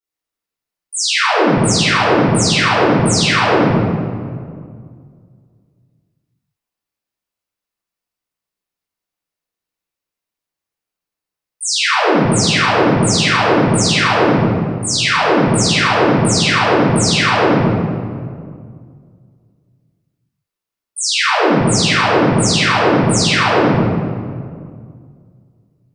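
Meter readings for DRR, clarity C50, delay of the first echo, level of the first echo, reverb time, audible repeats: −19.5 dB, −3.5 dB, no echo audible, no echo audible, 2.1 s, no echo audible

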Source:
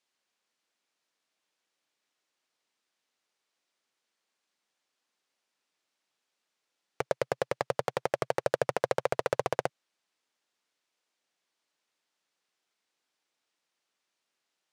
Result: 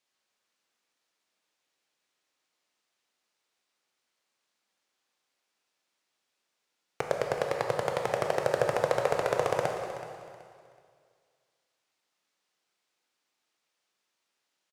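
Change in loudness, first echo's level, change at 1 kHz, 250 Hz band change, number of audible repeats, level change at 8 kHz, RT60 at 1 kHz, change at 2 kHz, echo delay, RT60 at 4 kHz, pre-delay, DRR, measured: +2.0 dB, −14.0 dB, +2.5 dB, +2.0 dB, 2, +2.0 dB, 2.1 s, +2.0 dB, 376 ms, 2.1 s, 6 ms, 1.5 dB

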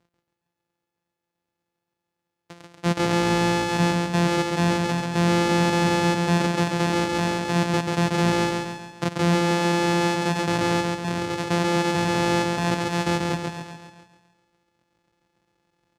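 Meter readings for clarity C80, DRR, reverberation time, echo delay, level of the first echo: no reverb audible, no reverb audible, no reverb audible, 137 ms, −3.0 dB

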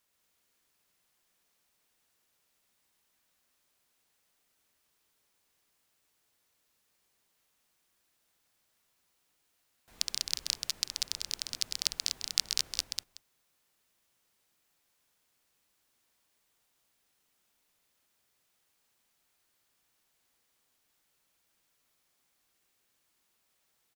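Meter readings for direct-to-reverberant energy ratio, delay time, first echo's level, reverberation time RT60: no reverb audible, 131 ms, −6.0 dB, no reverb audible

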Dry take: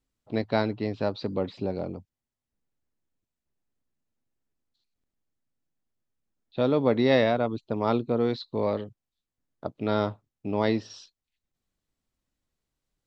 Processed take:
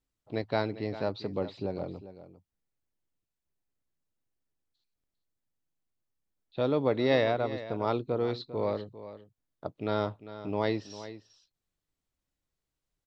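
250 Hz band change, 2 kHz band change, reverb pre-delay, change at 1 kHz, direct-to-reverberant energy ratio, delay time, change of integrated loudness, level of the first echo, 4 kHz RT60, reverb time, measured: −6.0 dB, −3.5 dB, no reverb audible, −3.5 dB, no reverb audible, 399 ms, −4.0 dB, −14.0 dB, no reverb audible, no reverb audible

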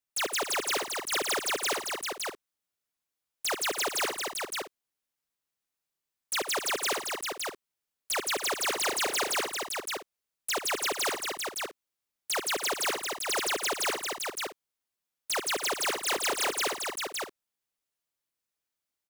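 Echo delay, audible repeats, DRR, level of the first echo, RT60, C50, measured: 69 ms, 5, no reverb audible, −11.5 dB, no reverb audible, no reverb audible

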